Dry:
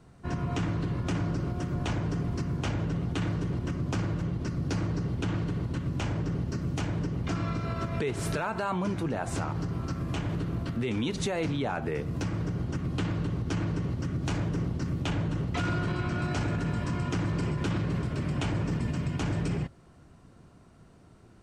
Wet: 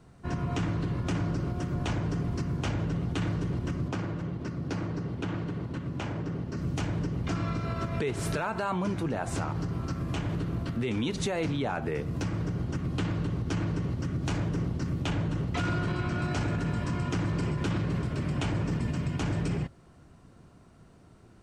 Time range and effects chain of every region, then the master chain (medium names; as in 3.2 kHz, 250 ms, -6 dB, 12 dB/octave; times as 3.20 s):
3.88–6.57 s: high-pass 150 Hz 6 dB/octave + treble shelf 4.5 kHz -9.5 dB
whole clip: none